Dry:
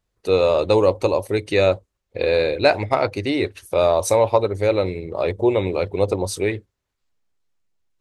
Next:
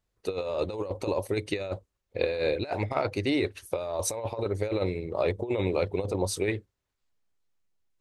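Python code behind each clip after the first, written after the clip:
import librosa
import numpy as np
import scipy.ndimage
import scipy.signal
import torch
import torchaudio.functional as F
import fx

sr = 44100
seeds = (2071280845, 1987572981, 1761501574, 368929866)

y = fx.over_compress(x, sr, threshold_db=-20.0, ratio=-0.5)
y = y * 10.0 ** (-7.0 / 20.0)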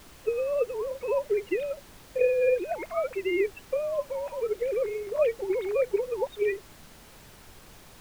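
y = fx.sine_speech(x, sr)
y = fx.dmg_noise_colour(y, sr, seeds[0], colour='pink', level_db=-52.0)
y = y * 10.0 ** (1.5 / 20.0)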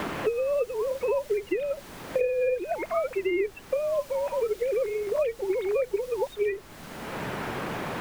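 y = fx.band_squash(x, sr, depth_pct=100)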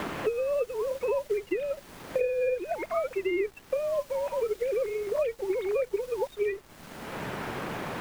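y = np.sign(x) * np.maximum(np.abs(x) - 10.0 ** (-52.0 / 20.0), 0.0)
y = y * 10.0 ** (-1.5 / 20.0)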